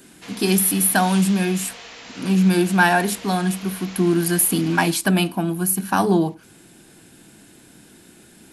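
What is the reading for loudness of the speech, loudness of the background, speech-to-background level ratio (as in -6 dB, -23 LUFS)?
-19.5 LUFS, -37.0 LUFS, 17.5 dB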